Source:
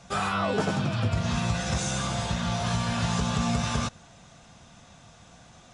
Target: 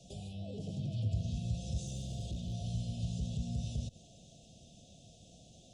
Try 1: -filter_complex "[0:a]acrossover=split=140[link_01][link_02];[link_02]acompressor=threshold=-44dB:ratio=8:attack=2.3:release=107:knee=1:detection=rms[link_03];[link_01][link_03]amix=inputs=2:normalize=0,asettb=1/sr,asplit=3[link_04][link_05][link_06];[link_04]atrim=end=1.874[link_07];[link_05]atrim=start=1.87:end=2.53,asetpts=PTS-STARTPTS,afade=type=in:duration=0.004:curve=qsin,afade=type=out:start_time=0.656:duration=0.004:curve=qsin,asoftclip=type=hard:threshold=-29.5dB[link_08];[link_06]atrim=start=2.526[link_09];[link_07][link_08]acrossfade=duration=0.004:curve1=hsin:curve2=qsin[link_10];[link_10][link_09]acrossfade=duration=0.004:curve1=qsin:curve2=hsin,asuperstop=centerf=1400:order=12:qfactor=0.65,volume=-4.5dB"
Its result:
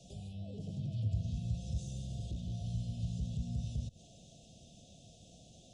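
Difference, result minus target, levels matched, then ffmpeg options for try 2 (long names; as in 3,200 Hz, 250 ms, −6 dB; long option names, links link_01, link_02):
downward compressor: peak gain reduction +5 dB
-filter_complex "[0:a]acrossover=split=140[link_01][link_02];[link_02]acompressor=threshold=-38dB:ratio=8:attack=2.3:release=107:knee=1:detection=rms[link_03];[link_01][link_03]amix=inputs=2:normalize=0,asettb=1/sr,asplit=3[link_04][link_05][link_06];[link_04]atrim=end=1.874[link_07];[link_05]atrim=start=1.87:end=2.53,asetpts=PTS-STARTPTS,afade=type=in:duration=0.004:curve=qsin,afade=type=out:start_time=0.656:duration=0.004:curve=qsin,asoftclip=type=hard:threshold=-29.5dB[link_08];[link_06]atrim=start=2.526[link_09];[link_07][link_08]acrossfade=duration=0.004:curve1=hsin:curve2=qsin[link_10];[link_10][link_09]acrossfade=duration=0.004:curve1=qsin:curve2=hsin,asuperstop=centerf=1400:order=12:qfactor=0.65,volume=-4.5dB"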